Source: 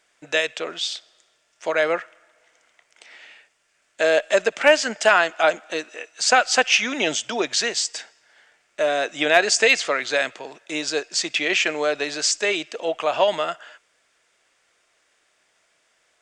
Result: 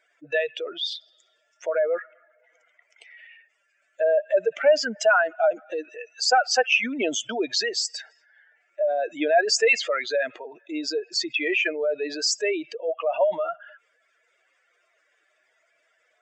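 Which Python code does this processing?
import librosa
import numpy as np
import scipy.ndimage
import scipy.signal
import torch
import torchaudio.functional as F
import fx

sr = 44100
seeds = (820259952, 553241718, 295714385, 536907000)

y = fx.spec_expand(x, sr, power=2.5)
y = F.gain(torch.from_numpy(y), -2.0).numpy()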